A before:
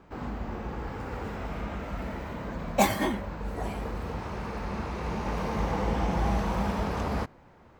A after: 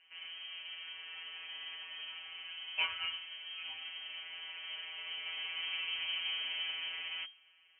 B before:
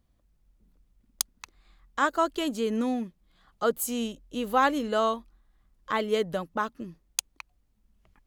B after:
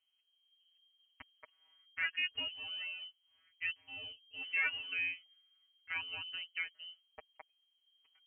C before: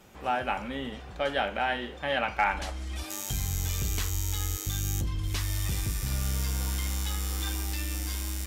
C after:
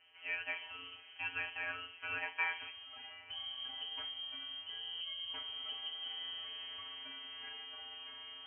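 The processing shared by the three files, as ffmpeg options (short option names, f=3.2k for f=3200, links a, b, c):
-af "afftfilt=real='hypot(re,im)*cos(PI*b)':imag='0':win_size=1024:overlap=0.75,lowpass=f=2.7k:t=q:w=0.5098,lowpass=f=2.7k:t=q:w=0.6013,lowpass=f=2.7k:t=q:w=0.9,lowpass=f=2.7k:t=q:w=2.563,afreqshift=-3200,volume=-7dB"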